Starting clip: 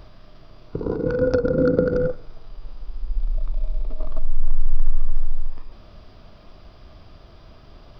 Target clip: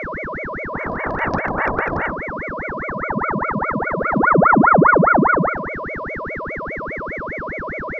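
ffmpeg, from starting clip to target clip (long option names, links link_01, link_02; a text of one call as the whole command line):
ffmpeg -i in.wav -af "aeval=exprs='val(0)+0.0891*sin(2*PI*810*n/s)':channel_layout=same,aeval=exprs='val(0)*sin(2*PI*810*n/s+810*0.8/4.9*sin(2*PI*4.9*n/s))':channel_layout=same" out.wav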